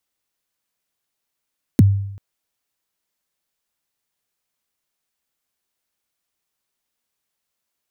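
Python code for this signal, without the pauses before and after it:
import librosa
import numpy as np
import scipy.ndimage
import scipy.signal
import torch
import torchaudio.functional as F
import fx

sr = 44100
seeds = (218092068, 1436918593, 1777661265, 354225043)

y = fx.drum_kick(sr, seeds[0], length_s=0.39, level_db=-5.0, start_hz=320.0, end_hz=99.0, sweep_ms=25.0, decay_s=0.78, click=True)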